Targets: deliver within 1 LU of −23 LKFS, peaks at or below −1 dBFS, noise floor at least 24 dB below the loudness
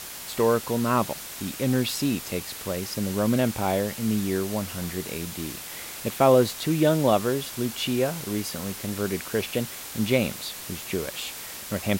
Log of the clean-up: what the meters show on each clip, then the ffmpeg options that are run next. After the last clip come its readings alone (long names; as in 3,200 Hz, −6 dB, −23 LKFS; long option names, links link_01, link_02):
background noise floor −38 dBFS; target noise floor −51 dBFS; integrated loudness −26.5 LKFS; sample peak −6.5 dBFS; target loudness −23.0 LKFS
→ -af "afftdn=noise_reduction=13:noise_floor=-38"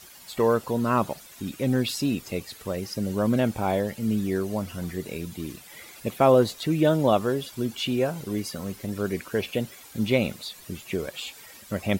background noise floor −48 dBFS; target noise floor −51 dBFS
→ -af "afftdn=noise_reduction=6:noise_floor=-48"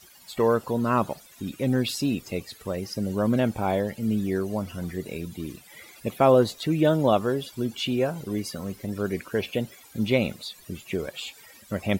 background noise floor −52 dBFS; integrated loudness −26.5 LKFS; sample peak −6.5 dBFS; target loudness −23.0 LKFS
→ -af "volume=3.5dB"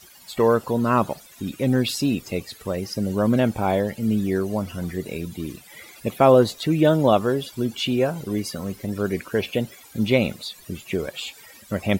integrated loudness −23.0 LKFS; sample peak −3.0 dBFS; background noise floor −48 dBFS